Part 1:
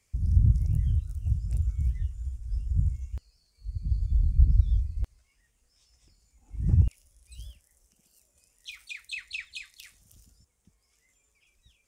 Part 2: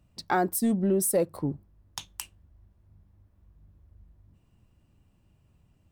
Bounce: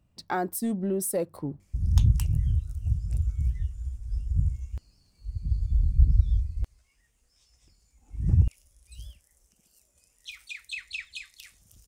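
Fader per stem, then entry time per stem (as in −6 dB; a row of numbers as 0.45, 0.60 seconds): +0.5, −3.5 decibels; 1.60, 0.00 seconds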